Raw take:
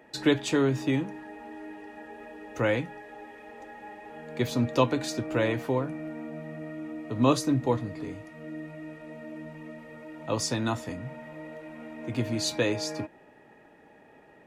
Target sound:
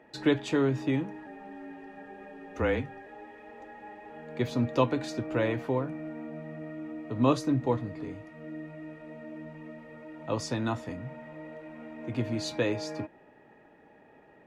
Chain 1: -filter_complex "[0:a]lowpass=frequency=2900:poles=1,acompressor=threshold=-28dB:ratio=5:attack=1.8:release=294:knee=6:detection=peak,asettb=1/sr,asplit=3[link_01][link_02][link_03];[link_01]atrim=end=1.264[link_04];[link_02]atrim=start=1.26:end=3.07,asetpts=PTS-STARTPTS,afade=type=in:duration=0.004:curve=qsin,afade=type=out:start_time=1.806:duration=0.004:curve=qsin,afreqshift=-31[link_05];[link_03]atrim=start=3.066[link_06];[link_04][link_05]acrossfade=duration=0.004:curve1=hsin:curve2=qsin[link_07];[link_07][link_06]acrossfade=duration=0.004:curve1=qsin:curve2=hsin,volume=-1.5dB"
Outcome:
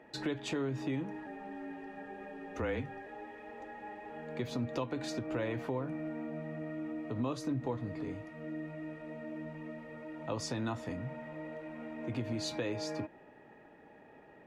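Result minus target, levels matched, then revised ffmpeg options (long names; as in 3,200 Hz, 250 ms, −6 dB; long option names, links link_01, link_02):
downward compressor: peak gain reduction +14 dB
-filter_complex "[0:a]lowpass=frequency=2900:poles=1,asettb=1/sr,asplit=3[link_01][link_02][link_03];[link_01]atrim=end=1.264[link_04];[link_02]atrim=start=1.26:end=3.07,asetpts=PTS-STARTPTS,afade=type=in:duration=0.004:curve=qsin,afade=type=out:start_time=1.806:duration=0.004:curve=qsin,afreqshift=-31[link_05];[link_03]atrim=start=3.066[link_06];[link_04][link_05]acrossfade=duration=0.004:curve1=hsin:curve2=qsin[link_07];[link_07][link_06]acrossfade=duration=0.004:curve1=qsin:curve2=hsin,volume=-1.5dB"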